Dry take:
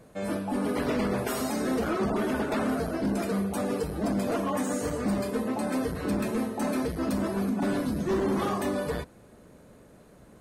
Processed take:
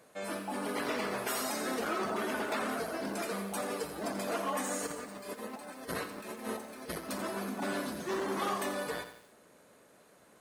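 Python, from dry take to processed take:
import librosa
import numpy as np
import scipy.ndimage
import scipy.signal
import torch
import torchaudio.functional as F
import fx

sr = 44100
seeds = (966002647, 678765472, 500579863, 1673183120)

y = fx.highpass(x, sr, hz=910.0, slope=6)
y = fx.over_compress(y, sr, threshold_db=-42.0, ratio=-0.5, at=(4.86, 7.08), fade=0.02)
y = fx.echo_crushed(y, sr, ms=86, feedback_pct=55, bits=9, wet_db=-10.0)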